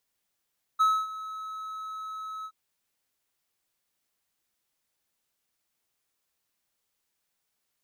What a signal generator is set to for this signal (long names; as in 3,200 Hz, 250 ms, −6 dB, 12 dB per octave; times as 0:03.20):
note with an ADSR envelope triangle 1,290 Hz, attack 21 ms, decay 256 ms, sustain −17 dB, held 1.66 s, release 62 ms −16 dBFS